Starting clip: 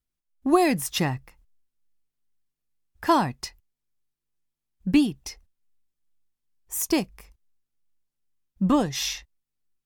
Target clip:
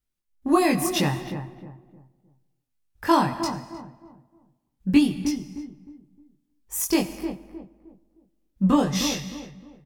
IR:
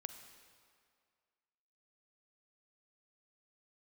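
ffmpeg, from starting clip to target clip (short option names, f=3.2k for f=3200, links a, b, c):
-filter_complex "[0:a]bandreject=f=690:w=18,asplit=2[a][b];[b]adelay=309,lowpass=f=920:p=1,volume=-8dB,asplit=2[c][d];[d]adelay=309,lowpass=f=920:p=1,volume=0.34,asplit=2[e][f];[f]adelay=309,lowpass=f=920:p=1,volume=0.34,asplit=2[g][h];[h]adelay=309,lowpass=f=920:p=1,volume=0.34[i];[a][c][e][g][i]amix=inputs=5:normalize=0,asplit=2[j][k];[1:a]atrim=start_sample=2205,afade=t=out:st=0.39:d=0.01,atrim=end_sample=17640,adelay=21[l];[k][l]afir=irnorm=-1:irlink=0,volume=2dB[m];[j][m]amix=inputs=2:normalize=0,volume=-1dB"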